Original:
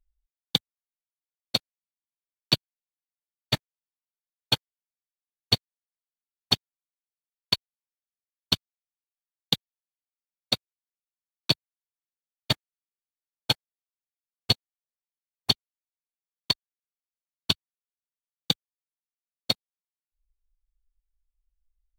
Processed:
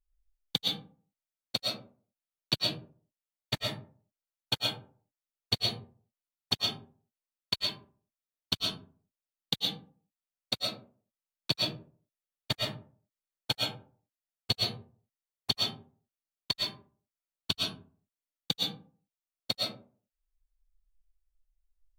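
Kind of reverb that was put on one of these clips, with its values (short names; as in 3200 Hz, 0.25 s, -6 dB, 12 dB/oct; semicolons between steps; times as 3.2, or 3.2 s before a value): digital reverb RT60 0.44 s, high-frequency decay 0.45×, pre-delay 80 ms, DRR -2.5 dB; gain -7 dB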